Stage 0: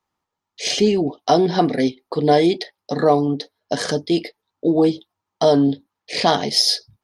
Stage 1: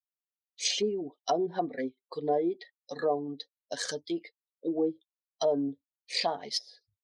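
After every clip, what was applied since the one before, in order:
spectral dynamics exaggerated over time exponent 1.5
treble cut that deepens with the level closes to 720 Hz, closed at −15 dBFS
bass and treble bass −14 dB, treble +12 dB
level −8 dB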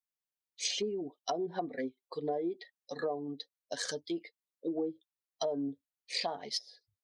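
downward compressor, threshold −28 dBFS, peak gain reduction 6.5 dB
level −2 dB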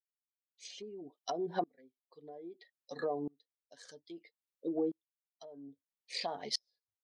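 tremolo with a ramp in dB swelling 0.61 Hz, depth 32 dB
level +3 dB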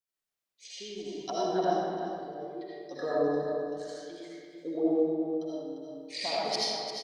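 repeating echo 348 ms, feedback 24%, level −8.5 dB
convolution reverb RT60 1.7 s, pre-delay 40 ms, DRR −7.5 dB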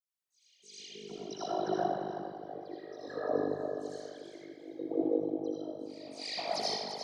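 amplitude modulation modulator 50 Hz, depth 90%
all-pass dispersion lows, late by 140 ms, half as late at 3,000 Hz
backwards echo 317 ms −18 dB

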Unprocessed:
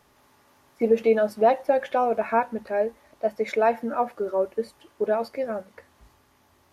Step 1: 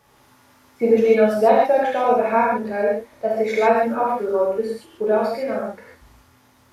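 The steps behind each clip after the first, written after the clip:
reverb whose tail is shaped and stops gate 170 ms flat, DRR −5 dB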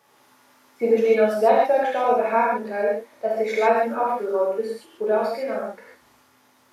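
Bessel high-pass filter 270 Hz, order 2
level −1.5 dB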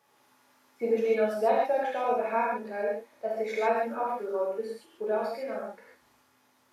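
tuned comb filter 830 Hz, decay 0.36 s, mix 60%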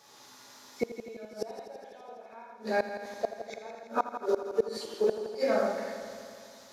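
gate with flip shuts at −23 dBFS, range −29 dB
flat-topped bell 5,100 Hz +10 dB 1.2 octaves
on a send: echo machine with several playback heads 83 ms, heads first and second, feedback 70%, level −13.5 dB
on the sum: level +8 dB

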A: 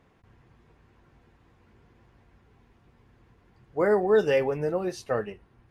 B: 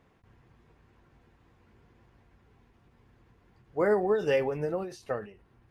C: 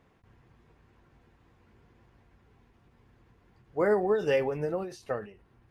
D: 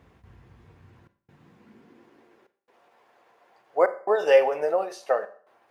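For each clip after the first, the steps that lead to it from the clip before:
every ending faded ahead of time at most 120 dB per second; level −2 dB
no processing that can be heard
high-pass filter sweep 62 Hz → 640 Hz, 0:00.43–0:02.89; gate pattern "xxxxxxxxxx..x" 140 BPM −60 dB; on a send at −13 dB: convolution reverb RT60 0.50 s, pre-delay 31 ms; on the sum: level +5.5 dB

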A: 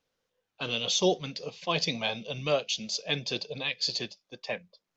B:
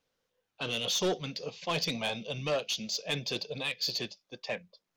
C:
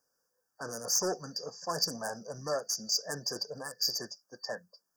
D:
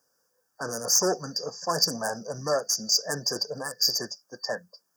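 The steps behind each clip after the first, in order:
soft clipping −24 dBFS, distortion −11 dB
brick-wall band-stop 1,800–4,600 Hz; spectral tilt +2.5 dB per octave
high-pass filter 52 Hz; level +7 dB

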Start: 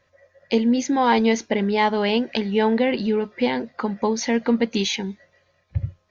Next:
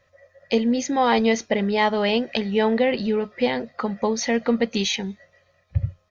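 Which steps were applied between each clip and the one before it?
comb filter 1.6 ms, depth 39%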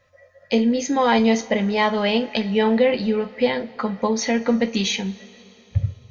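convolution reverb, pre-delay 3 ms, DRR 5 dB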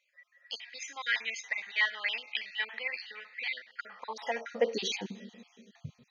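time-frequency cells dropped at random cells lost 37%
high-pass filter sweep 1,900 Hz → 210 Hz, 0:03.66–0:05.28
level −8.5 dB

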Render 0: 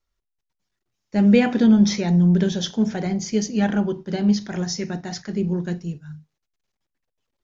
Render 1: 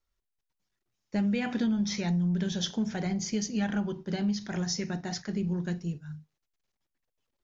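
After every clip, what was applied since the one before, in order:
dynamic equaliser 420 Hz, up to −7 dB, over −30 dBFS, Q 0.72
downward compressor 10 to 1, threshold −21 dBFS, peak gain reduction 8 dB
level −3.5 dB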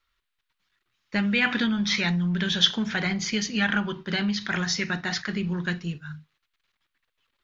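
flat-topped bell 2,100 Hz +13 dB 2.3 octaves
level +2 dB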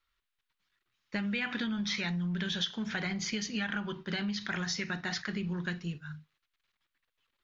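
downward compressor 6 to 1, threshold −25 dBFS, peak gain reduction 11 dB
level −5 dB

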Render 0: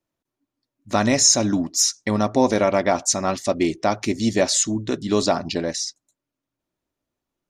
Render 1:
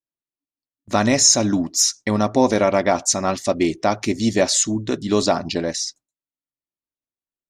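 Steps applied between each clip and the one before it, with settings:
noise gate with hold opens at −37 dBFS
level +1.5 dB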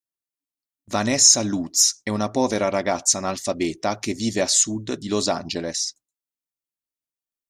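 high-shelf EQ 4,600 Hz +8.5 dB
level −5 dB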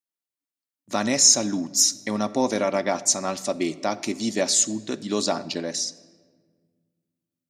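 high-pass filter 130 Hz 24 dB per octave
convolution reverb RT60 1.6 s, pre-delay 3 ms, DRR 15.5 dB
level −2 dB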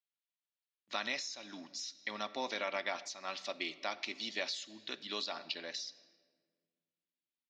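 resonant band-pass 3,600 Hz, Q 1.5
downward compressor 5 to 1, threshold −33 dBFS, peak gain reduction 14 dB
high-frequency loss of the air 240 metres
level +5 dB

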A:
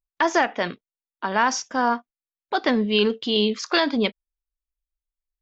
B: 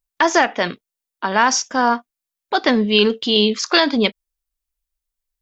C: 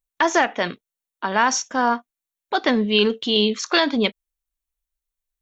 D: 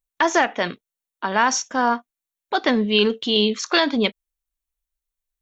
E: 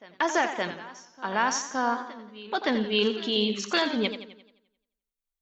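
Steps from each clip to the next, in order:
high-shelf EQ 4,700 Hz +7 dB; level +4.5 dB
notch filter 4,900 Hz, Q 7.1; level −3 dB
no processing that can be heard
backwards echo 568 ms −19.5 dB; feedback echo with a swinging delay time 87 ms, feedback 49%, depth 95 cents, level −10 dB; level −7 dB

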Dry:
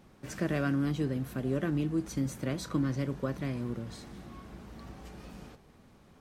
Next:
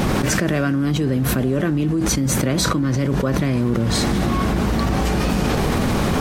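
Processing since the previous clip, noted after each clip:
envelope flattener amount 100%
level +7.5 dB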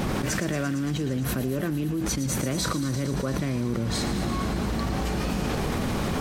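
delay with a high-pass on its return 114 ms, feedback 83%, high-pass 2,500 Hz, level −10.5 dB
level −8 dB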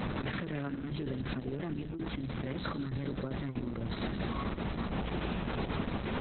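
level −7 dB
Opus 6 kbit/s 48,000 Hz

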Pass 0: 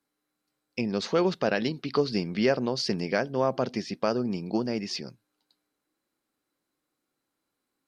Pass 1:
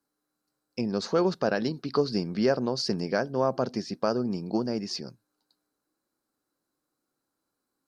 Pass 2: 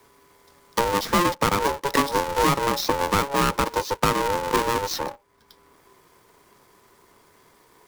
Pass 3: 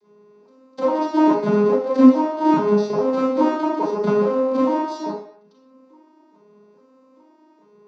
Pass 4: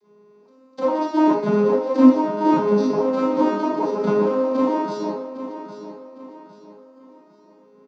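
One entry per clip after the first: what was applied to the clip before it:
flat-topped bell 2,600 Hz −8.5 dB 1.1 octaves
each half-wave held at its own peak; ring modulation 700 Hz; multiband upward and downward compressor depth 70%; level +3.5 dB
vocoder with an arpeggio as carrier major triad, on G#3, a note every 421 ms; convolution reverb RT60 0.55 s, pre-delay 32 ms, DRR −11 dB; level −12.5 dB
repeating echo 806 ms, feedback 38%, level −12 dB; level −1 dB

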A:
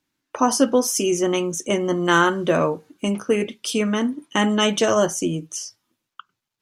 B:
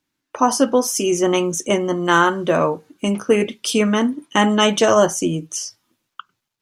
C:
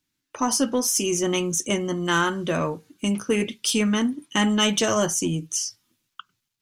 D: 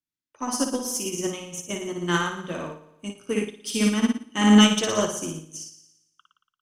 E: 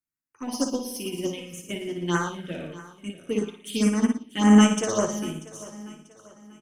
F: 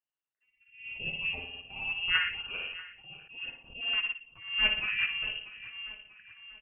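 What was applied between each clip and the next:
dynamic equaliser 890 Hz, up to +4 dB, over −28 dBFS, Q 1.2; automatic gain control gain up to 5.5 dB
parametric band 680 Hz −10.5 dB 2.8 octaves; in parallel at −6 dB: soft clipping −20.5 dBFS, distortion −12 dB; on the sum: level −2 dB
on a send: flutter between parallel walls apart 9.8 metres, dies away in 0.97 s; on the sum: expander for the loud parts 2.5 to 1, over −28 dBFS; level +3 dB
phaser swept by the level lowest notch 600 Hz, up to 3,900 Hz, full sweep at −17.5 dBFS; repeating echo 639 ms, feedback 39%, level −18 dB
voice inversion scrambler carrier 3,000 Hz; speech leveller within 3 dB 2 s; level that may rise only so fast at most 110 dB per second; level −5 dB

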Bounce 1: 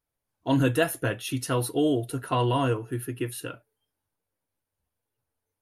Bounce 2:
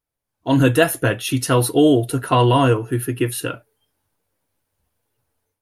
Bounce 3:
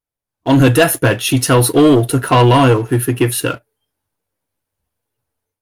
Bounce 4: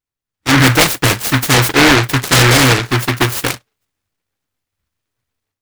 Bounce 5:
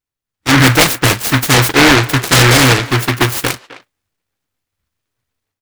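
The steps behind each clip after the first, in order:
automatic gain control gain up to 11 dB
leveller curve on the samples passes 2
short delay modulated by noise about 1,500 Hz, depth 0.44 ms
far-end echo of a speakerphone 260 ms, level −15 dB; level +1 dB

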